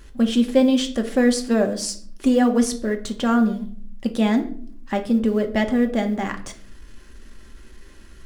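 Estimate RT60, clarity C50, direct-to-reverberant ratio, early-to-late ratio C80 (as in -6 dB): not exponential, 13.0 dB, 4.5 dB, 17.5 dB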